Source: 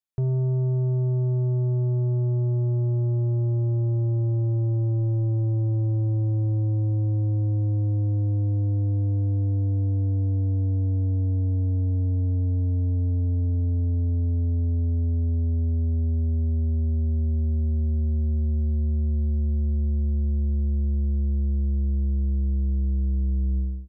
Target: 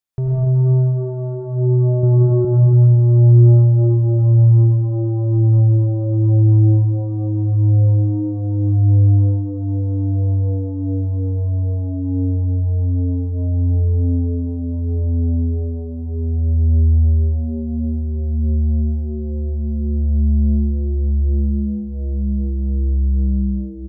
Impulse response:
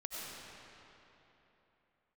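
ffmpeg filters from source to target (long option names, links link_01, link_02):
-filter_complex "[0:a]asettb=1/sr,asplit=3[link_01][link_02][link_03];[link_01]atrim=end=2.034[link_04];[link_02]atrim=start=2.03:end=2.45,asetpts=PTS-STARTPTS,afade=type=in:duration=0.004:curve=qsin,afade=type=out:start_time=0.416:duration=0.004:curve=qsin,acontrast=86[link_05];[link_03]atrim=start=2.446[link_06];[link_04][link_05]acrossfade=duration=0.004:curve1=hsin:curve2=qsin[link_07];[link_07][link_06]acrossfade=duration=0.004:curve1=qsin:curve2=hsin,aecho=1:1:286:0.473[link_08];[1:a]atrim=start_sample=2205,afade=type=out:start_time=0.32:duration=0.01,atrim=end_sample=14553[link_09];[link_08][link_09]afir=irnorm=-1:irlink=0,volume=9dB"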